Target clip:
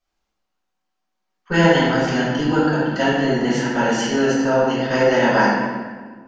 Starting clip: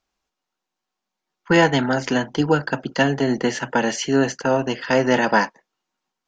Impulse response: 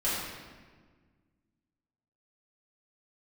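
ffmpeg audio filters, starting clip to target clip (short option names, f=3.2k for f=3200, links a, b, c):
-filter_complex "[1:a]atrim=start_sample=2205[a];[0:a][a]afir=irnorm=-1:irlink=0,volume=-7.5dB"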